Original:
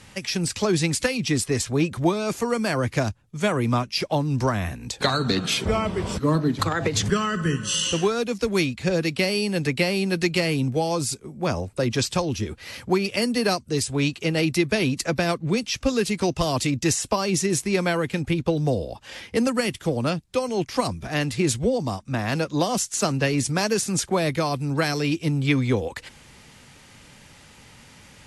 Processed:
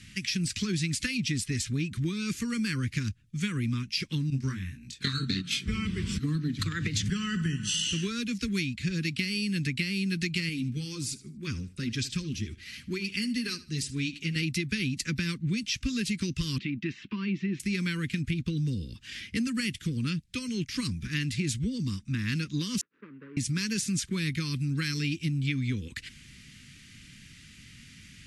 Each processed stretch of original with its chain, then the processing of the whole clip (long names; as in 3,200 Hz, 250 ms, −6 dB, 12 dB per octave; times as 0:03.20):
0:04.30–0:05.68: noise gate −24 dBFS, range −11 dB + high-pass filter 47 Hz + double-tracking delay 22 ms −2.5 dB
0:10.49–0:14.36: flanger 2 Hz, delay 2.4 ms, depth 3.2 ms, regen −40% + repeating echo 77 ms, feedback 29%, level −18 dB
0:16.58–0:17.60: downward compressor 2 to 1, threshold −25 dBFS + loudspeaker in its box 200–2,900 Hz, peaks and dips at 200 Hz +7 dB, 360 Hz +6 dB, 510 Hz −10 dB, 950 Hz +7 dB
0:22.81–0:23.37: running median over 41 samples + flat-topped band-pass 820 Hz, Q 0.9 + high-frequency loss of the air 200 metres
whole clip: Chebyshev band-stop filter 230–2,100 Hz, order 2; high-shelf EQ 11,000 Hz −8.5 dB; downward compressor, threshold −26 dBFS